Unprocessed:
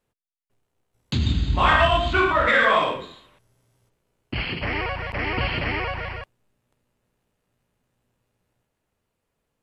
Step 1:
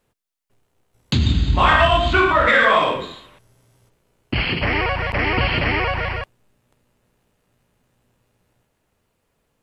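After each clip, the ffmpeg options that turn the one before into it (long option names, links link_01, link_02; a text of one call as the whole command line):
ffmpeg -i in.wav -af "acompressor=threshold=-27dB:ratio=1.5,volume=8dB" out.wav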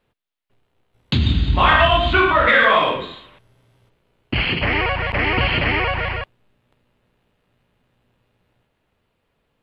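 ffmpeg -i in.wav -af "highshelf=frequency=4700:width_type=q:width=1.5:gain=-9" out.wav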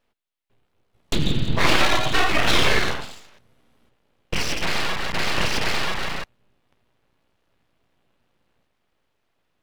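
ffmpeg -i in.wav -af "aeval=exprs='abs(val(0))':channel_layout=same,volume=-1.5dB" out.wav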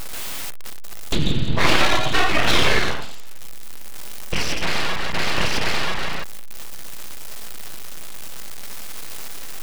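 ffmpeg -i in.wav -af "aeval=exprs='val(0)+0.5*0.1*sgn(val(0))':channel_layout=same,volume=1dB" out.wav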